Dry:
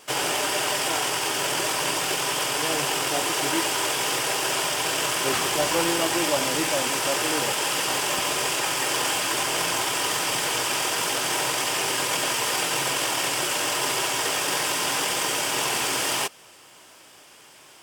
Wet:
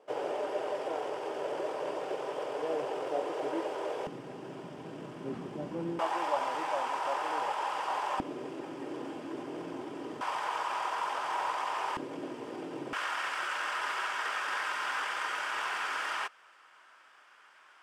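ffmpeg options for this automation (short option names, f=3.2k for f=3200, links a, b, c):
-af "asetnsamples=n=441:p=0,asendcmd='4.07 bandpass f 210;5.99 bandpass f 900;8.2 bandpass f 280;10.21 bandpass f 1000;11.97 bandpass f 290;12.93 bandpass f 1400',bandpass=f=510:t=q:w=2.5:csg=0"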